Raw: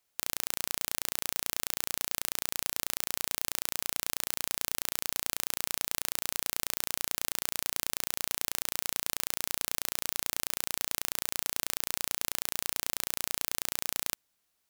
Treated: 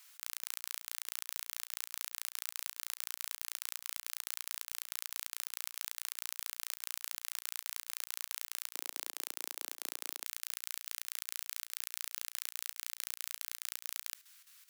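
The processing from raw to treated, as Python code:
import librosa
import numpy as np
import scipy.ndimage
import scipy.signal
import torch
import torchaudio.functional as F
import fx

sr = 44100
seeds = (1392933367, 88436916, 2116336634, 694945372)

y = fx.highpass(x, sr, hz=fx.steps((0.0, 1100.0), (8.75, 320.0), (10.25, 1300.0)), slope=24)
y = fx.over_compress(y, sr, threshold_db=-47.0, ratio=-1.0)
y = fx.chopper(y, sr, hz=4.7, depth_pct=65, duty_pct=80)
y = F.gain(torch.from_numpy(y), 5.5).numpy()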